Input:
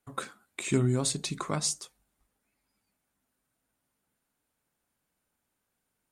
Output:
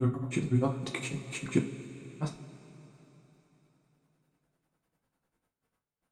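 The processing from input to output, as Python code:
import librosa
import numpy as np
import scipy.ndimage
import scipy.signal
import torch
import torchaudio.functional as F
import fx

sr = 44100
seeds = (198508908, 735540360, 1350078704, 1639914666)

p1 = fx.high_shelf(x, sr, hz=2600.0, db=-10.5)
p2 = fx.level_steps(p1, sr, step_db=24)
p3 = p1 + (p2 * librosa.db_to_amplitude(-1.5))
p4 = fx.granulator(p3, sr, seeds[0], grain_ms=100.0, per_s=10.0, spray_ms=896.0, spread_st=0)
p5 = fx.rev_double_slope(p4, sr, seeds[1], early_s=0.27, late_s=3.9, knee_db=-18, drr_db=1.5)
y = p5 * librosa.db_to_amplitude(3.0)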